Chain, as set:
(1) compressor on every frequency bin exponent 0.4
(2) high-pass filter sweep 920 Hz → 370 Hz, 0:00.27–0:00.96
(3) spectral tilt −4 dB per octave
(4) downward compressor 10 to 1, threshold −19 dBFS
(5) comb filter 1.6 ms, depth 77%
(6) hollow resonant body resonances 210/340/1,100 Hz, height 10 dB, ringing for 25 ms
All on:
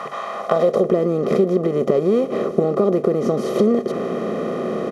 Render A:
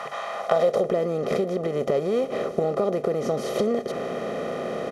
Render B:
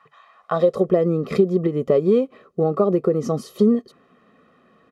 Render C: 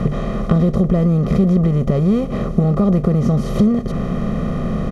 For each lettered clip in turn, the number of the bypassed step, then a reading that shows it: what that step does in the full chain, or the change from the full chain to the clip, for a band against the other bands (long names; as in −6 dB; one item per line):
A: 6, 2 kHz band +5.5 dB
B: 1, 1 kHz band −3.5 dB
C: 2, 125 Hz band +15.0 dB